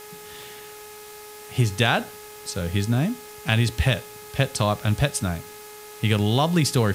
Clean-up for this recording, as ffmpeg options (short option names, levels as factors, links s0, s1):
-af "adeclick=t=4,bandreject=f=420.9:t=h:w=4,bandreject=f=841.8:t=h:w=4,bandreject=f=1262.7:t=h:w=4,bandreject=f=1683.6:t=h:w=4,bandreject=f=2104.5:t=h:w=4,bandreject=f=2525.4:t=h:w=4,afftdn=nr=26:nf=-42"